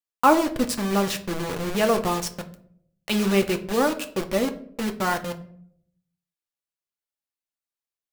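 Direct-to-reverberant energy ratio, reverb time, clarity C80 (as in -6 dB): 5.5 dB, 0.65 s, 17.5 dB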